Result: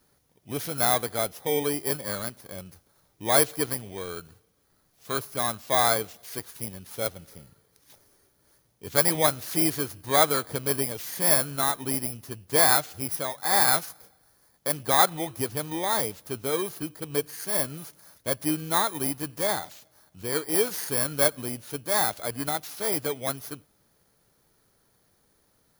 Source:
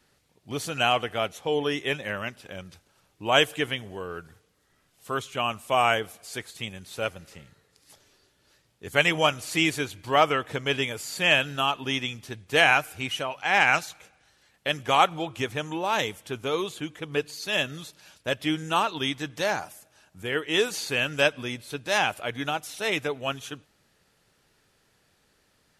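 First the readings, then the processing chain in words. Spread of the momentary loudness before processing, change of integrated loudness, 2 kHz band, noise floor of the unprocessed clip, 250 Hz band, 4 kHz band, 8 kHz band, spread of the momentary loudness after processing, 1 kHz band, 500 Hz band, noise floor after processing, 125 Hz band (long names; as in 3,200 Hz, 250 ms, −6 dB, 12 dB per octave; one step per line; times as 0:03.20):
15 LU, +1.0 dB, −7.0 dB, −67 dBFS, 0.0 dB, −4.5 dB, +10.5 dB, 16 LU, −2.0 dB, −0.5 dB, −67 dBFS, 0.0 dB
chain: samples in bit-reversed order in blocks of 16 samples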